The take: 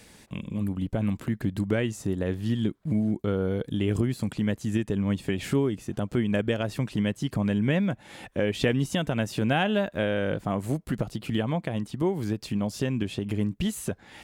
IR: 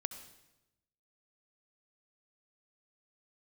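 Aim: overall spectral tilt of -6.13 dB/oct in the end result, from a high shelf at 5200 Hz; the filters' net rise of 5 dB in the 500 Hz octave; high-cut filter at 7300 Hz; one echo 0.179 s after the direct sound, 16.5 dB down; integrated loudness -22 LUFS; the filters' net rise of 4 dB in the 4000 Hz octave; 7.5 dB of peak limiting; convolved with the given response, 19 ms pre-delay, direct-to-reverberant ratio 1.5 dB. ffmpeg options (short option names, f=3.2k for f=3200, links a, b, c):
-filter_complex "[0:a]lowpass=7.3k,equalizer=f=500:t=o:g=6,equalizer=f=4k:t=o:g=3,highshelf=f=5.2k:g=7,alimiter=limit=-15dB:level=0:latency=1,aecho=1:1:179:0.15,asplit=2[a][b];[1:a]atrim=start_sample=2205,adelay=19[c];[b][c]afir=irnorm=-1:irlink=0,volume=-1dB[d];[a][d]amix=inputs=2:normalize=0,volume=2dB"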